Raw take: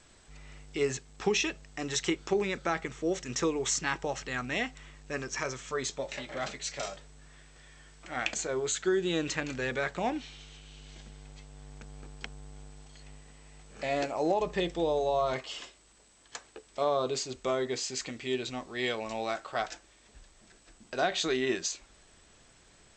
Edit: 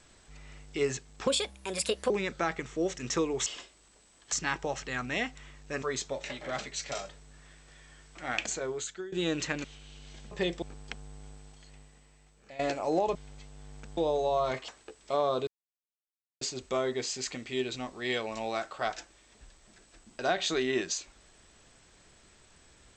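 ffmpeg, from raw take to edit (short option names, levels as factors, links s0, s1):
-filter_complex "[0:a]asplit=15[s0][s1][s2][s3][s4][s5][s6][s7][s8][s9][s10][s11][s12][s13][s14];[s0]atrim=end=1.274[s15];[s1]atrim=start=1.27:end=2.36,asetpts=PTS-STARTPTS,asetrate=57771,aresample=44100[s16];[s2]atrim=start=2.356:end=3.722[s17];[s3]atrim=start=15.498:end=16.362[s18];[s4]atrim=start=3.718:end=5.222[s19];[s5]atrim=start=5.698:end=9,asetpts=PTS-STARTPTS,afade=t=out:st=2.682:d=0.62:silence=0.1[s20];[s6]atrim=start=9:end=9.522,asetpts=PTS-STARTPTS,afade=t=in:d=0.004:c=hsin:silence=0.1[s21];[s7]atrim=start=10.458:end=11.132[s22];[s8]atrim=start=14.478:end=14.792[s23];[s9]atrim=start=11.948:end=13.92,asetpts=PTS-STARTPTS,afade=t=out:st=0.642:d=1.33:silence=0.158489[s24];[s10]atrim=start=13.92:end=14.482,asetpts=PTS-STARTPTS,afade=t=in:d=0.004:c=hsin:silence=0.158489[s25];[s11]atrim=start=11.128:end=11.952[s26];[s12]atrim=start=14.788:end=15.502[s27];[s13]atrim=start=16.358:end=17.15,asetpts=PTS-STARTPTS,afade=t=out:st=0.788:d=0.004:c=hsin,apad=pad_dur=0.94[s28];[s14]atrim=start=17.15,asetpts=PTS-STARTPTS,afade=t=in:d=0.004:c=hsin[s29];[s15][s16]acrossfade=d=0.004:c1=hsin:c2=hsin[s30];[s30][s17]acrossfade=d=0.004:c1=hsin:c2=hsin[s31];[s31][s18]acrossfade=d=0.004:c1=hsin:c2=hsin[s32];[s32][s19]acrossfade=d=0.004:c1=hsin:c2=hsin[s33];[s20][s21]concat=n=2:v=0:a=1[s34];[s33][s34]acrossfade=d=0.004:c1=hsin:c2=hsin[s35];[s35][s22]acrossfade=d=0.004:c1=hsin:c2=hsin[s36];[s36][s23]acrossfade=d=0.004:c1=hsin:c2=hsin[s37];[s24][s25]concat=n=2:v=0:a=1[s38];[s37][s38]acrossfade=d=0.004:c1=hsin:c2=hsin[s39];[s39][s26]acrossfade=d=0.004:c1=hsin:c2=hsin[s40];[s40][s27]acrossfade=d=0.004:c1=hsin:c2=hsin[s41];[s28][s29]concat=n=2:v=0:a=1[s42];[s41][s42]acrossfade=d=0.004:c1=hsin:c2=hsin"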